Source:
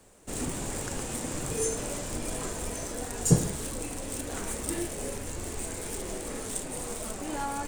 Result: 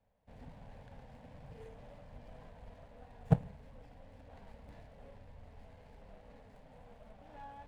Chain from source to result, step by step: Chebyshev shaper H 3 -11 dB, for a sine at -6.5 dBFS; distance through air 400 m; static phaser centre 1.3 kHz, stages 6; sliding maximum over 9 samples; trim +2.5 dB

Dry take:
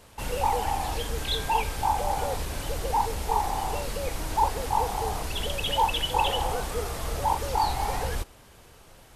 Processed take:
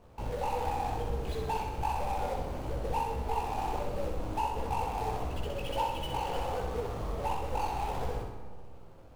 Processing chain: median filter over 25 samples; compression, threshold -28 dBFS, peak gain reduction 9 dB; chorus 1.5 Hz, delay 15.5 ms, depth 3.3 ms; on a send: flutter echo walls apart 10.9 m, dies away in 0.71 s; on the sum: algorithmic reverb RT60 1.7 s, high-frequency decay 0.4×, pre-delay 70 ms, DRR 10.5 dB; trim +1.5 dB

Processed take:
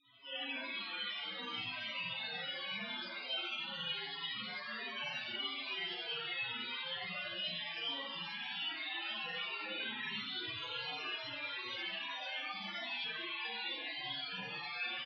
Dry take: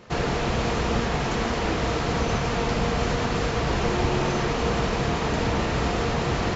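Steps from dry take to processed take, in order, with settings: one-sided wavefolder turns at -23 dBFS; high-pass 1.1 kHz 12 dB/octave; comb 4.4 ms, depth 40%; time stretch by phase-locked vocoder 1.7×; noise-vocoded speech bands 1; loudest bins only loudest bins 4; resonant low-pass 4.2 kHz, resonance Q 2.5; speed mistake 45 rpm record played at 33 rpm; Schroeder reverb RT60 0.71 s, combs from 32 ms, DRR -6.5 dB; trim -3.5 dB

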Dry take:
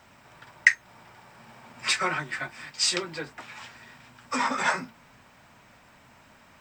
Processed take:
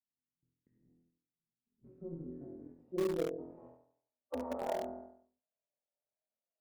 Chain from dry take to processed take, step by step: gate -43 dBFS, range -49 dB; bass shelf 350 Hz +8.5 dB; de-hum 98.26 Hz, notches 5; on a send: flutter echo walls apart 4.1 m, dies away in 0.56 s; on the sum: compression 6:1, threshold -31 dBFS, peak gain reduction 18.5 dB; band-pass sweep 320 Hz -> 650 Hz, 1.61–4.22 s; harmonic-percussive split percussive -12 dB; low-pass sweep 180 Hz -> 580 Hz, 1.69–4.60 s; in parallel at -11 dB: word length cut 6-bit, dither none; on the sum: AM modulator 180 Hz, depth 35%; trim +7 dB

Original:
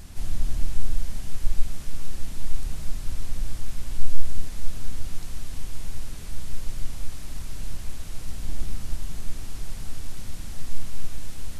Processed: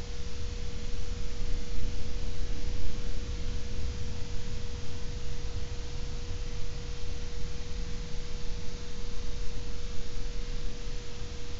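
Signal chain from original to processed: frequency axis rescaled in octaves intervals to 84%; Paulstretch 9.7×, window 0.50 s, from 8.29 s; whistle 480 Hz -49 dBFS

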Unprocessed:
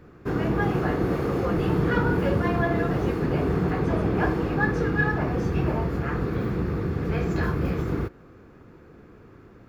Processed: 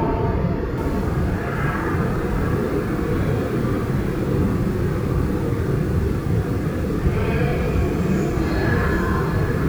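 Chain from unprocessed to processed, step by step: Paulstretch 5.3×, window 0.05 s, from 5.77 s; bit-crushed delay 777 ms, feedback 55%, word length 7-bit, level -7.5 dB; trim +4.5 dB

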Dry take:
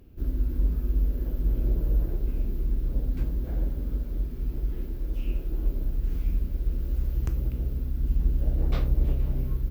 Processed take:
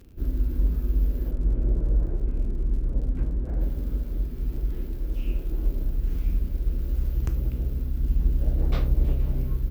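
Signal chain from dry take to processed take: 1.31–3.61 s: low-pass 1.8 kHz 12 dB/octave; crackle 66 per s -45 dBFS; trim +1.5 dB

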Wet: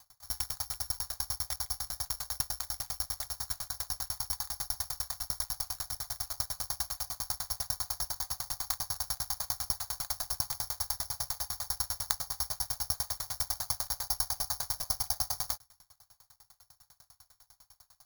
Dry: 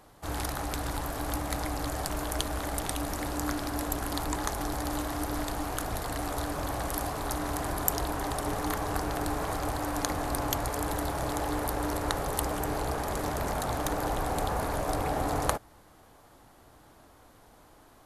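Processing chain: Chebyshev band-stop 110–890 Hz, order 2; careless resampling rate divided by 8×, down filtered, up zero stuff; sawtooth tremolo in dB decaying 10 Hz, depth 34 dB; trim -2 dB

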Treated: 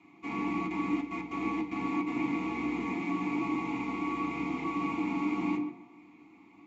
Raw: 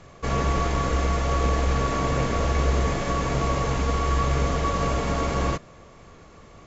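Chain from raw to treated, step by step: tape echo 137 ms, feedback 43%, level -7.5 dB, low-pass 1.3 kHz; 0.66–2.06 s: trance gate ".x.xxx.xxx" 149 bpm -12 dB; vowel filter u; treble shelf 3.2 kHz +10 dB; reverberation RT60 0.40 s, pre-delay 3 ms, DRR -2 dB

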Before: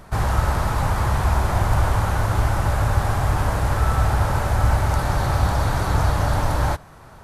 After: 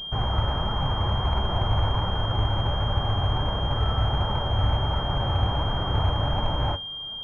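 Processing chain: flange 1.4 Hz, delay 4.2 ms, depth 6.9 ms, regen +65%; class-D stage that switches slowly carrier 3.2 kHz

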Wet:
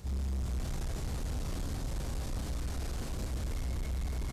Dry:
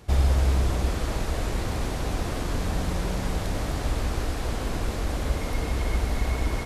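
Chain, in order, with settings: one-sided wavefolder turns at -17.5 dBFS; peaking EQ 11 kHz -3 dB 0.26 oct; peak limiter -24 dBFS, peak gain reduction 11 dB; plain phase-vocoder stretch 0.65×; tone controls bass +8 dB, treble +8 dB; loudspeakers at several distances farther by 11 m -5 dB, 75 m -9 dB; saturation -26 dBFS, distortion -11 dB; trim -4.5 dB

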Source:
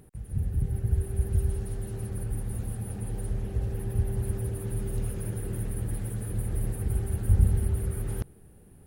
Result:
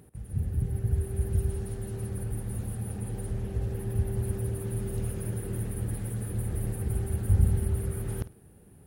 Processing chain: high-pass 55 Hz; on a send: flutter echo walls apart 8.8 m, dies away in 0.21 s

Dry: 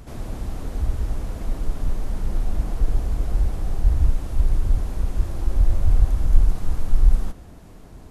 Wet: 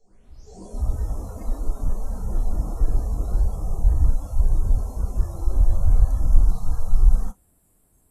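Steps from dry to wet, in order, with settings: tape start-up on the opening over 0.86 s; spectral noise reduction 21 dB; reverse echo 506 ms -23 dB

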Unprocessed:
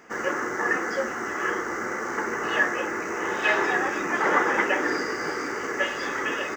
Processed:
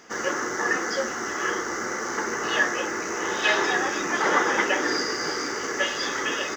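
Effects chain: high-order bell 4.6 kHz +10 dB 1.3 oct

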